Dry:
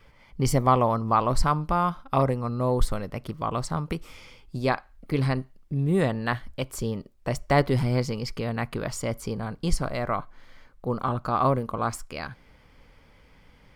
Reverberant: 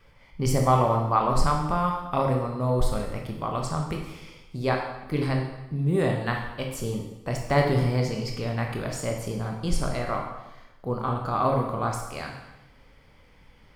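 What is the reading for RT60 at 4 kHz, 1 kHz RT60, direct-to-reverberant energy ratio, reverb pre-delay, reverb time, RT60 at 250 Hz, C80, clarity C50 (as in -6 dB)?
0.90 s, 0.95 s, 1.0 dB, 12 ms, 0.95 s, 1.0 s, 6.5 dB, 4.0 dB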